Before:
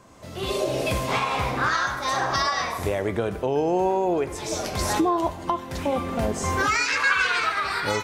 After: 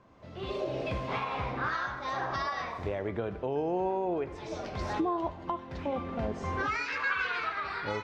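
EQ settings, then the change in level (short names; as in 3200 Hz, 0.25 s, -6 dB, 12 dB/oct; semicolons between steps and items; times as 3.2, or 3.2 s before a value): air absorption 220 m; -7.5 dB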